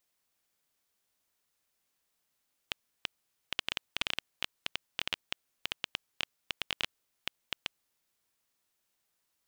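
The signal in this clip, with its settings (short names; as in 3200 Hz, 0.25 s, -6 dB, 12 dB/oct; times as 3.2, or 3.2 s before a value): random clicks 8.4/s -12.5 dBFS 5.01 s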